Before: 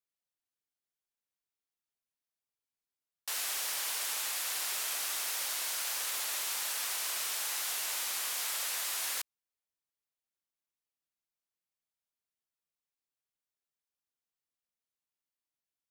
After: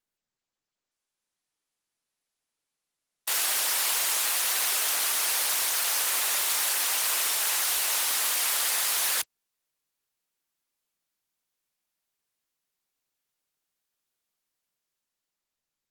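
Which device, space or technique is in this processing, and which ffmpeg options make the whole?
video call: -af "highpass=f=120:w=0.5412,highpass=f=120:w=1.3066,dynaudnorm=f=120:g=17:m=7dB,volume=3dB" -ar 48000 -c:a libopus -b:a 20k

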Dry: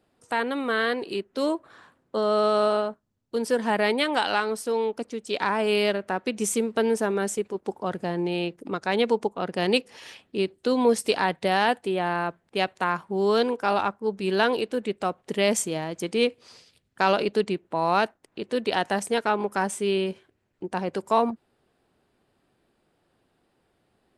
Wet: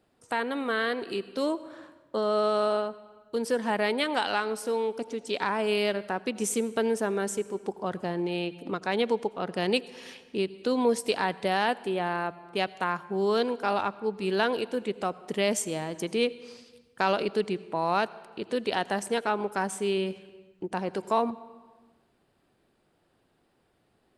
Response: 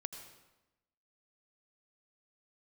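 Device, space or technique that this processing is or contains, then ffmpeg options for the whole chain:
ducked reverb: -filter_complex "[0:a]asplit=3[a][b][c];[1:a]atrim=start_sample=2205[d];[b][d]afir=irnorm=-1:irlink=0[e];[c]apad=whole_len=1066242[f];[e][f]sidechaincompress=threshold=-28dB:ratio=5:attack=12:release=607,volume=1dB[g];[a][g]amix=inputs=2:normalize=0,volume=-5.5dB"

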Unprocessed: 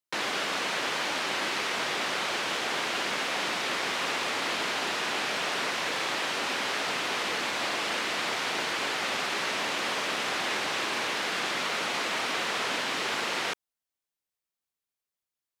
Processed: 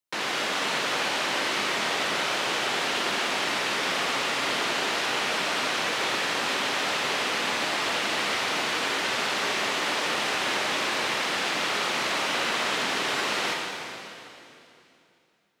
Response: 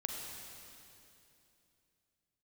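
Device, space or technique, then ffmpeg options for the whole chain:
stairwell: -filter_complex "[1:a]atrim=start_sample=2205[a];[0:a][a]afir=irnorm=-1:irlink=0,volume=2dB"

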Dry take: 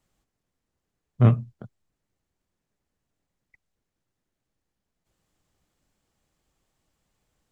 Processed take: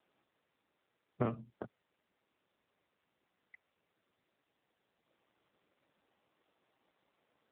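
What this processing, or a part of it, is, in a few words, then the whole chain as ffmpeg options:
voicemail: -af "highpass=300,lowpass=2.9k,acompressor=threshold=-35dB:ratio=12,volume=5dB" -ar 8000 -c:a libopencore_amrnb -b:a 7400

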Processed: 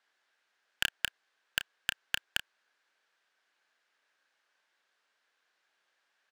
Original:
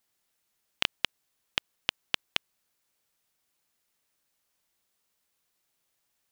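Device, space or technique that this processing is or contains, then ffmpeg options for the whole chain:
megaphone: -filter_complex "[0:a]highpass=460,lowpass=3.8k,equalizer=f=1.6k:t=o:w=0.33:g=10,asoftclip=type=hard:threshold=-19dB,asplit=2[a][b];[b]adelay=31,volume=-12dB[c];[a][c]amix=inputs=2:normalize=0,volume=5dB"

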